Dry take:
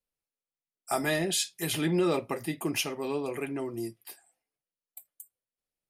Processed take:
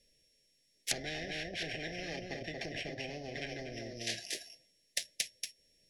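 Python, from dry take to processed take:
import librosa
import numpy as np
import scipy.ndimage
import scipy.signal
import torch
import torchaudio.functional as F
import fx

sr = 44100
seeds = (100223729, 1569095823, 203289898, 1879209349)

y = np.r_[np.sort(x[:len(x) // 8 * 8].reshape(-1, 8), axis=1).ravel(), x[len(x) // 8 * 8:]]
y = scipy.signal.sosfilt(scipy.signal.butter(2, 7800.0, 'lowpass', fs=sr, output='sos'), y)
y = y + 10.0 ** (-8.0 / 20.0) * np.pad(y, (int(234 * sr / 1000.0), 0))[:len(y)]
y = fx.env_lowpass_down(y, sr, base_hz=700.0, full_db=-29.0)
y = scipy.signal.sosfilt(scipy.signal.ellip(3, 1.0, 40, [640.0, 1800.0], 'bandstop', fs=sr, output='sos'), y)
y = fx.high_shelf(y, sr, hz=5100.0, db=7.0)
y = fx.spectral_comp(y, sr, ratio=10.0)
y = y * 10.0 ** (7.0 / 20.0)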